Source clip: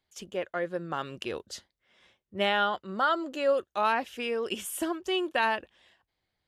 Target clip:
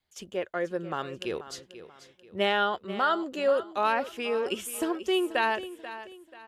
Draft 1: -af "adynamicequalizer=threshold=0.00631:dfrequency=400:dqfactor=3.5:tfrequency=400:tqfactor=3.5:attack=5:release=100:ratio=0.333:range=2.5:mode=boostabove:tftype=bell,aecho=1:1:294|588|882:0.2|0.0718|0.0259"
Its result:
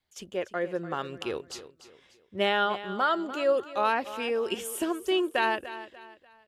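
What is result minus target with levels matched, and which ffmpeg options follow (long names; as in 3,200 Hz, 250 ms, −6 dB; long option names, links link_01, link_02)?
echo 192 ms early
-af "adynamicequalizer=threshold=0.00631:dfrequency=400:dqfactor=3.5:tfrequency=400:tqfactor=3.5:attack=5:release=100:ratio=0.333:range=2.5:mode=boostabove:tftype=bell,aecho=1:1:486|972|1458:0.2|0.0718|0.0259"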